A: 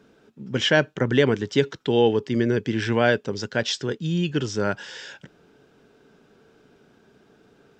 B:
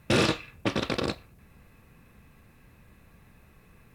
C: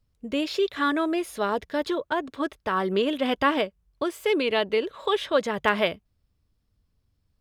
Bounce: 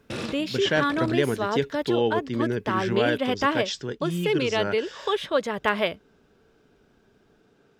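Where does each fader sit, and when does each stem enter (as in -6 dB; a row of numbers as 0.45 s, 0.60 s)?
-5.0 dB, -10.0 dB, -1.0 dB; 0.00 s, 0.00 s, 0.00 s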